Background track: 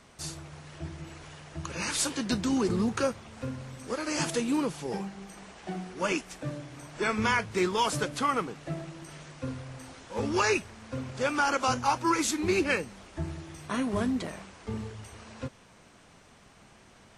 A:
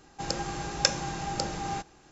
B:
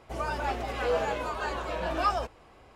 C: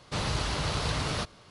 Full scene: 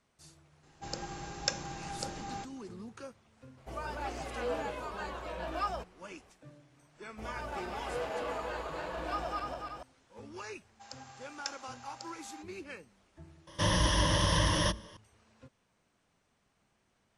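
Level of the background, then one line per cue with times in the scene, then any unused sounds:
background track -18.5 dB
0.63 s: add A -8 dB
3.57 s: add B -7.5 dB
7.08 s: add B -11 dB + backward echo that repeats 145 ms, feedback 72%, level -1 dB
10.61 s: add A -15.5 dB + high-pass 620 Hz 24 dB/octave
13.47 s: add C -0.5 dB + rippled EQ curve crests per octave 1.2, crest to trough 16 dB

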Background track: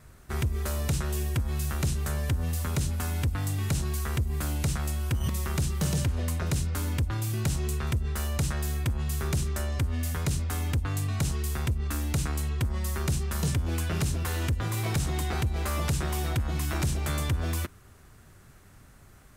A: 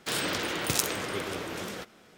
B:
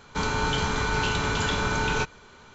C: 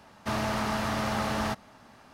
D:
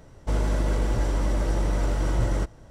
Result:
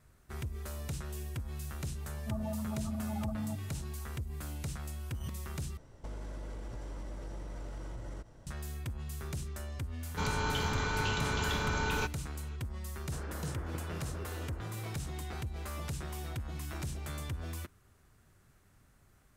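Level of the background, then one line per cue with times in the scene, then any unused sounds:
background track -11 dB
2.01 s: add C -7.5 dB + spectral contrast enhancement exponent 3.8
5.77 s: replace with D -7 dB + compression 12:1, threshold -31 dBFS
10.02 s: add B -7.5 dB
13.05 s: add A -12.5 dB + low-pass 1.6 kHz 24 dB/octave

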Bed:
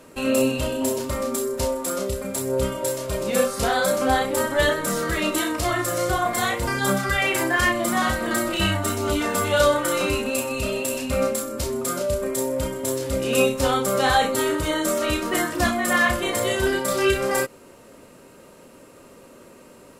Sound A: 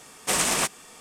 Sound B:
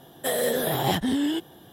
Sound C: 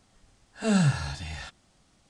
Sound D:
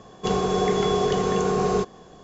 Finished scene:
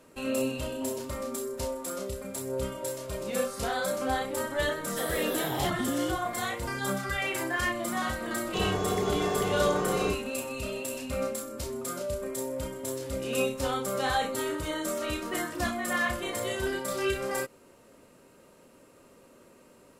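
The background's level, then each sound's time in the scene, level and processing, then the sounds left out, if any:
bed -9 dB
4.72 s: add B -7 dB + phase dispersion lows, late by 52 ms, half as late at 490 Hz
8.30 s: add D -7.5 dB
not used: A, C

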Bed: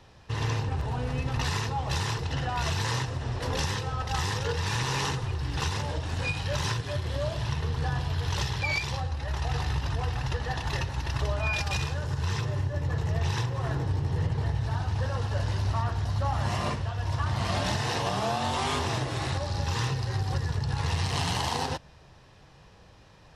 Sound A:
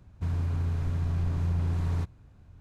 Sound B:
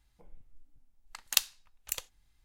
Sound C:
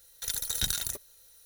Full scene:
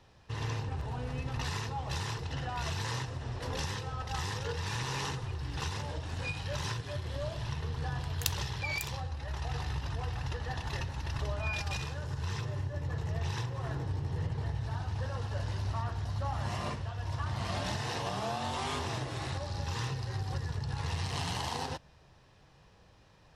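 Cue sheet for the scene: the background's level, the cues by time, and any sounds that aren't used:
bed -6.5 dB
6.89 s: add B -7.5 dB
9.92 s: add A -3.5 dB + compression, threshold -39 dBFS
not used: C

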